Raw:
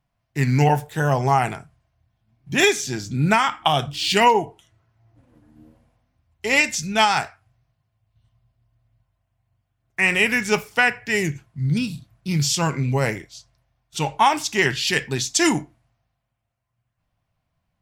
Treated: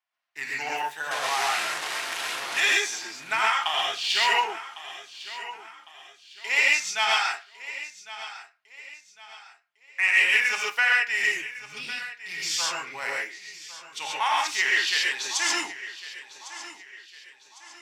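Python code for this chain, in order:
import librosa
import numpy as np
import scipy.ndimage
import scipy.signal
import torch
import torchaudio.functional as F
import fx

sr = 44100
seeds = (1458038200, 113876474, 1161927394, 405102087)

p1 = fx.delta_mod(x, sr, bps=64000, step_db=-15.5, at=(1.11, 2.6))
p2 = fx.lowpass(p1, sr, hz=3300.0, slope=6)
p3 = p2 + fx.echo_feedback(p2, sr, ms=1104, feedback_pct=39, wet_db=-15.5, dry=0)
p4 = fx.rev_gated(p3, sr, seeds[0], gate_ms=160, shape='rising', drr_db=-3.5)
p5 = np.clip(p4, -10.0 ** (-12.5 / 20.0), 10.0 ** (-12.5 / 20.0))
p6 = p4 + (p5 * 10.0 ** (-8.5 / 20.0))
p7 = scipy.signal.sosfilt(scipy.signal.butter(2, 1400.0, 'highpass', fs=sr, output='sos'), p6)
y = p7 * 10.0 ** (-5.0 / 20.0)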